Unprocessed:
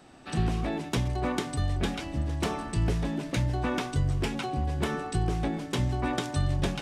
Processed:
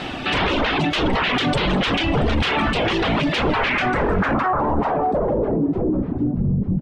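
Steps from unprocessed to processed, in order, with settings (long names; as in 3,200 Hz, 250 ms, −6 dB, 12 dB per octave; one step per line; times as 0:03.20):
in parallel at −10.5 dB: bit-depth reduction 8 bits, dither triangular
on the sum: sine wavefolder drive 18 dB, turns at −12.5 dBFS
low-pass filter sweep 3,100 Hz → 180 Hz, 0:03.48–0:06.57
reverb reduction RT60 0.94 s
brickwall limiter −13.5 dBFS, peak gain reduction 8.5 dB
on a send: echo with shifted repeats 200 ms, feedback 42%, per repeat +65 Hz, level −18 dB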